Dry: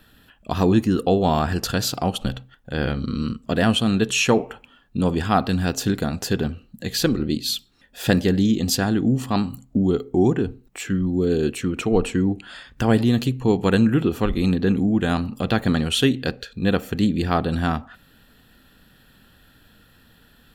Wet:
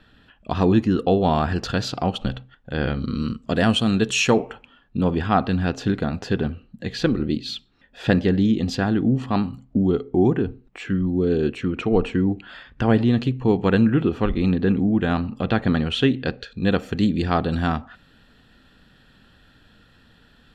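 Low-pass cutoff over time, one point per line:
2.94 s 4.1 kHz
3.52 s 7.7 kHz
4.26 s 7.7 kHz
4.97 s 3.2 kHz
16.20 s 3.2 kHz
16.60 s 5.9 kHz

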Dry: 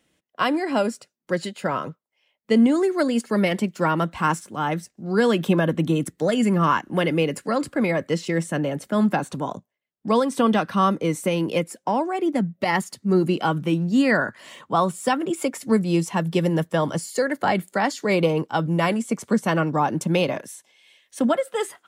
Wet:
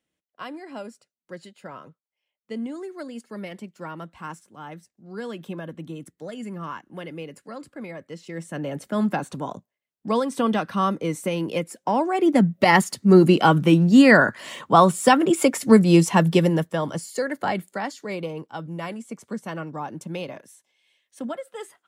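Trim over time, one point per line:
8.17 s -14.5 dB
8.76 s -3 dB
11.62 s -3 dB
12.45 s +6 dB
16.25 s +6 dB
16.76 s -3.5 dB
17.47 s -3.5 dB
18.21 s -11 dB

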